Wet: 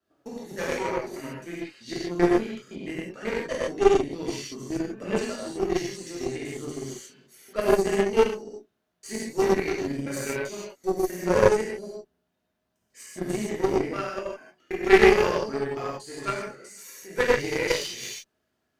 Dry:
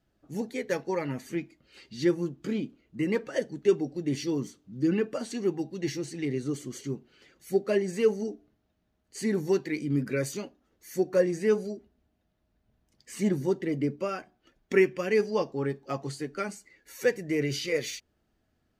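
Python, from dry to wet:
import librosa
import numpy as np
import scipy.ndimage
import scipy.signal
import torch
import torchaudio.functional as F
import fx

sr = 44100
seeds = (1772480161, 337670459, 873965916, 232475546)

y = fx.block_reorder(x, sr, ms=129.0, group=2)
y = fx.highpass(y, sr, hz=380.0, slope=6)
y = fx.rev_gated(y, sr, seeds[0], gate_ms=190, shape='flat', drr_db=-8.0)
y = fx.cheby_harmonics(y, sr, harmonics=(2, 6, 7, 8), levels_db=(-10, -23, -23, -34), full_scale_db=-4.0)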